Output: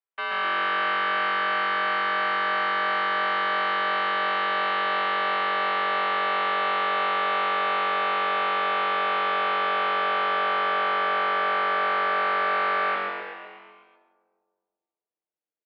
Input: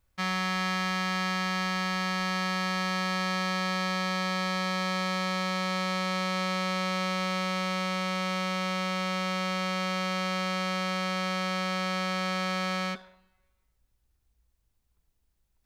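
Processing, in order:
leveller curve on the samples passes 5
echo with shifted repeats 125 ms, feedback 59%, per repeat +140 Hz, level −4.5 dB
comb and all-pass reverb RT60 1.9 s, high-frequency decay 0.3×, pre-delay 90 ms, DRR 11 dB
single-sideband voice off tune −130 Hz 560–3,500 Hz
level −7 dB

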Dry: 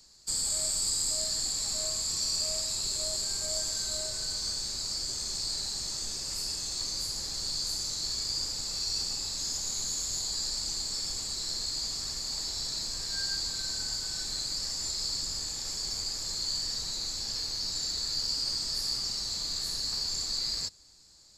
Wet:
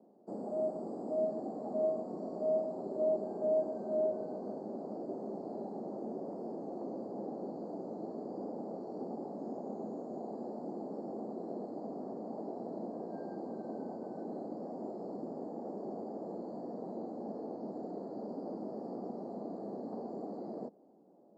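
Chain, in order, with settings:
elliptic band-pass filter 210–720 Hz, stop band 60 dB
level +14 dB

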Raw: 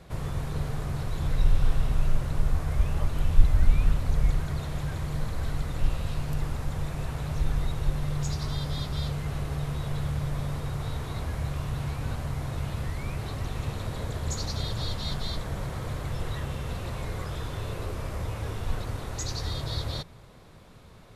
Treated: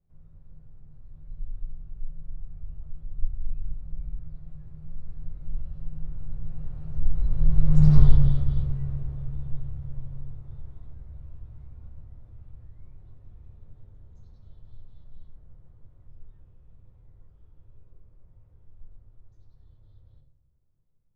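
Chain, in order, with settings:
source passing by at 0:07.95, 20 m/s, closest 2.7 metres
spectral tilt −4 dB per octave
on a send: convolution reverb RT60 0.65 s, pre-delay 6 ms, DRR 3 dB
on the sum: level −3 dB

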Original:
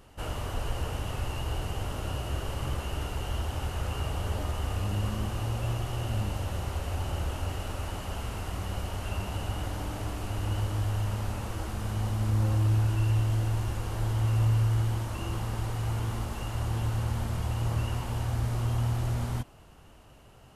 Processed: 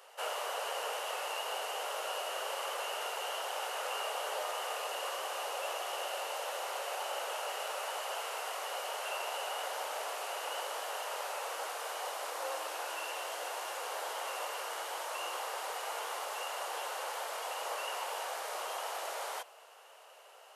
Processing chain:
Butterworth high-pass 470 Hz 48 dB per octave
level +3 dB

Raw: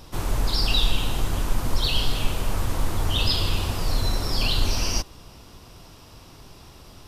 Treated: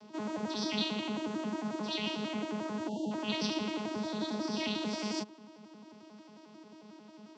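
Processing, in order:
vocoder with an arpeggio as carrier bare fifth, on A3, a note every 86 ms
time-frequency box erased 0:02.77–0:02.99, 970–2,800 Hz
speed change −4%
level −5.5 dB

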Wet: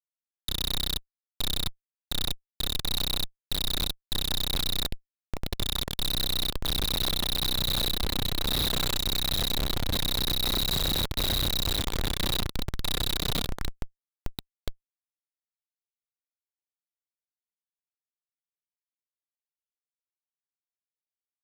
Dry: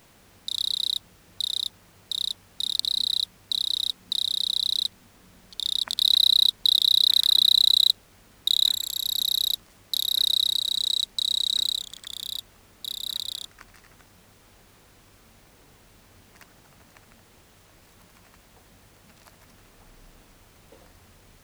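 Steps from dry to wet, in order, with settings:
feedback echo with a long and a short gap by turns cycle 1,028 ms, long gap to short 3 to 1, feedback 78%, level −19.5 dB
comparator with hysteresis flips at −30 dBFS
level +1.5 dB

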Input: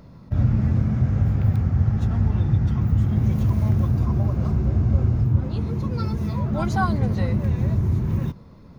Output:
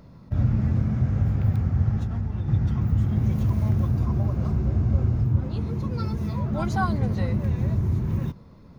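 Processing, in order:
0:01.98–0:02.48: downward compressor, threshold −21 dBFS, peak gain reduction 6.5 dB
level −2.5 dB

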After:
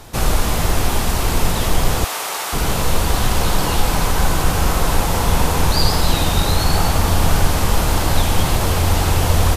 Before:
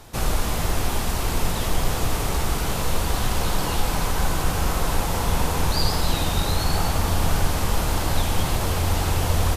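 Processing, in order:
0:02.04–0:02.53: high-pass filter 710 Hz 12 dB per octave
level +6 dB

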